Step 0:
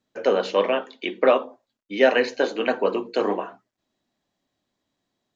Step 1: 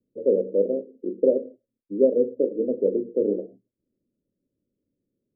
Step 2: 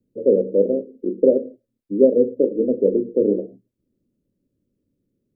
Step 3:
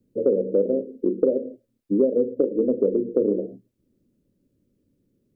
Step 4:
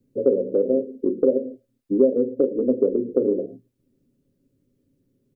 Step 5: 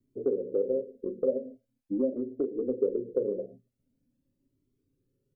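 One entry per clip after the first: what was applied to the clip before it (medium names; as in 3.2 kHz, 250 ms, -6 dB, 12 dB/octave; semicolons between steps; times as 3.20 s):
steep low-pass 540 Hz 72 dB/octave; trim +1.5 dB
bass shelf 290 Hz +8.5 dB; trim +2 dB
compression 5:1, threshold -22 dBFS, peak gain reduction 12.5 dB; trim +4.5 dB
comb 7.5 ms, depth 47%
Shepard-style flanger rising 0.44 Hz; trim -4 dB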